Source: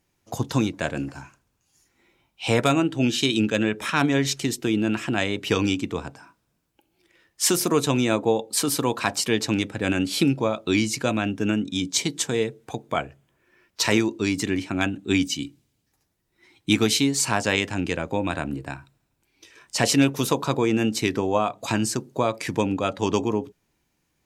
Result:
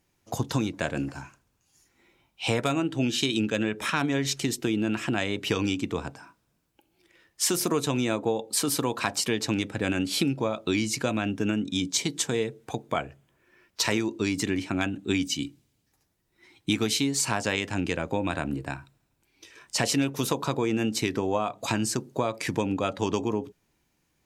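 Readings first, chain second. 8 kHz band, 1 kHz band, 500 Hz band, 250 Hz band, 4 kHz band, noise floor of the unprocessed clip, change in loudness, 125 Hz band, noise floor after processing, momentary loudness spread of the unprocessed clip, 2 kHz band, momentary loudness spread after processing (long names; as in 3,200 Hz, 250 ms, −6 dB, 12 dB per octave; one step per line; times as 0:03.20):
−3.0 dB, −4.0 dB, −4.0 dB, −4.0 dB, −3.0 dB, −73 dBFS, −4.0 dB, −3.5 dB, −73 dBFS, 9 LU, −4.0 dB, 7 LU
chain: downward compressor 3 to 1, threshold −23 dBFS, peak gain reduction 8 dB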